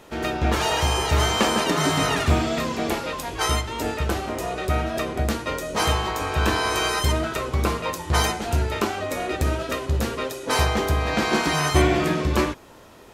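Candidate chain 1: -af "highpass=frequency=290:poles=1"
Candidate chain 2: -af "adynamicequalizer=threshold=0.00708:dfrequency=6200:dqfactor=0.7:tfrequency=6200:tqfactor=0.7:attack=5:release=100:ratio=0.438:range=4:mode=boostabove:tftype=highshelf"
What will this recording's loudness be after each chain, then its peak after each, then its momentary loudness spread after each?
−25.0, −22.5 LKFS; −6.5, −4.0 dBFS; 7, 7 LU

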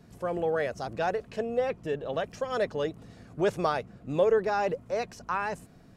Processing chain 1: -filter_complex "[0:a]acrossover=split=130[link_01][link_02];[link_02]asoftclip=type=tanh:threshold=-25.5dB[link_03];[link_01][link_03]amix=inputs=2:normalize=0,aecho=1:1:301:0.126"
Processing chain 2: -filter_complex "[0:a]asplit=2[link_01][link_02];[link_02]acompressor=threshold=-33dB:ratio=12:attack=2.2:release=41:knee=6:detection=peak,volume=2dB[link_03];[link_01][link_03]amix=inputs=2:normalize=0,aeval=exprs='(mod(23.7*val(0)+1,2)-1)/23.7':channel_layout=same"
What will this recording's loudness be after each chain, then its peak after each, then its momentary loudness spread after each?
−33.5, −32.5 LKFS; −24.0, −27.5 dBFS; 7, 4 LU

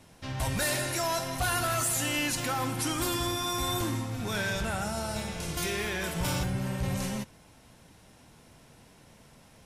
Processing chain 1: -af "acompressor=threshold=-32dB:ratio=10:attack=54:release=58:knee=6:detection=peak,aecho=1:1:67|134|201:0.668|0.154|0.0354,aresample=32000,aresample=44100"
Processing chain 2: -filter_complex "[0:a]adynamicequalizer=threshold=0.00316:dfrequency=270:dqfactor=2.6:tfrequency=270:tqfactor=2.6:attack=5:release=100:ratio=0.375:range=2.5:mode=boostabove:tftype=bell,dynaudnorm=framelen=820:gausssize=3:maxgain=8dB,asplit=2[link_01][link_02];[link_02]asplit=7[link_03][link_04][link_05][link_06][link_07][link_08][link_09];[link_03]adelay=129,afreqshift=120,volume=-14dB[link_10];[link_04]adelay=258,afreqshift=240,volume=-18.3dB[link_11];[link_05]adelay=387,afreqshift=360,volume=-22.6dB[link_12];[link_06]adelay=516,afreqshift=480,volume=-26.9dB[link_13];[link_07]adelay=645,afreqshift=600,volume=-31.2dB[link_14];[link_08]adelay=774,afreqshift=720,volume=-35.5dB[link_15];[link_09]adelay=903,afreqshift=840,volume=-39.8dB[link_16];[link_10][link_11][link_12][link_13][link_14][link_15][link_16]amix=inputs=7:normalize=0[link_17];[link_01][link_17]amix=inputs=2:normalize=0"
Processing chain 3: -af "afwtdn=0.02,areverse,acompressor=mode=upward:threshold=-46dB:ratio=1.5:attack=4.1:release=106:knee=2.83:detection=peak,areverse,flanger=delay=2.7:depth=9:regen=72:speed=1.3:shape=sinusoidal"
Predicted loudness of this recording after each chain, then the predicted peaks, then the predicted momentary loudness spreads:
−30.5, −22.0, −36.5 LKFS; −20.0, −10.5, −24.0 dBFS; 5, 7, 7 LU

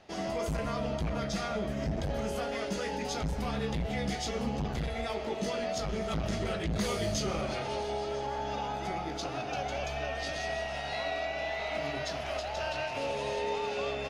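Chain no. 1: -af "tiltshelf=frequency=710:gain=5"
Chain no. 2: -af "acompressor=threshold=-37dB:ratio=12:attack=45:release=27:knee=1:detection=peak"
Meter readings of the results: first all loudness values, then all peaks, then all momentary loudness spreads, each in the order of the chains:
−32.5, −34.5 LKFS; −17.0, −22.0 dBFS; 5, 1 LU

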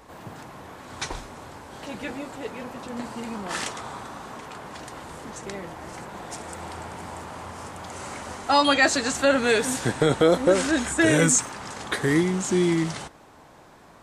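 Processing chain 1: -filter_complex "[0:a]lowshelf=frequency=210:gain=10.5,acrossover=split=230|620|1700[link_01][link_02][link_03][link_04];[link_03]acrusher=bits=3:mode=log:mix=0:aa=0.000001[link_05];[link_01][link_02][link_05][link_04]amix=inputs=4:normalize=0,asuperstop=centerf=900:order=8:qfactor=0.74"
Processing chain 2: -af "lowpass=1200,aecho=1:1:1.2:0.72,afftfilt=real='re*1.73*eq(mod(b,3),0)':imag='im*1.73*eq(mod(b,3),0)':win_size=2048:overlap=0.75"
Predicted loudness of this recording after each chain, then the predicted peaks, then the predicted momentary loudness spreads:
−22.0, −29.5 LKFS; −5.5, −9.0 dBFS; 21, 18 LU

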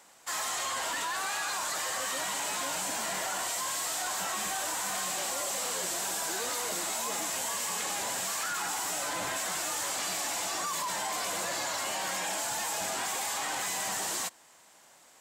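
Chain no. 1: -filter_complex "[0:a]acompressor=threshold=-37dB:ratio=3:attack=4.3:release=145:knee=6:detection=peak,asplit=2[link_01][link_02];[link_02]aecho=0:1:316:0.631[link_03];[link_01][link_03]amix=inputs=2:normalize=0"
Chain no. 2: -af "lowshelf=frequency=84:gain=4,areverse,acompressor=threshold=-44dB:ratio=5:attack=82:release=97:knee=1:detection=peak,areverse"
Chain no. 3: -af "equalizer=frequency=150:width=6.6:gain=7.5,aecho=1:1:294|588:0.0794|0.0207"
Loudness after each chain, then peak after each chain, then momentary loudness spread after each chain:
−35.5, −38.5, −31.0 LKFS; −25.0, −26.0, −21.5 dBFS; 1, 1, 1 LU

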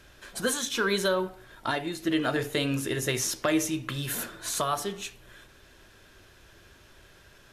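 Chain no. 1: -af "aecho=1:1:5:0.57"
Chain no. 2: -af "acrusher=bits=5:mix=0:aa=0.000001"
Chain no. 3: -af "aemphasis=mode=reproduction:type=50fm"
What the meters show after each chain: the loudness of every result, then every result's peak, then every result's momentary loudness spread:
−28.0, −28.5, −30.0 LKFS; −11.5, −14.5, −15.0 dBFS; 9, 8, 10 LU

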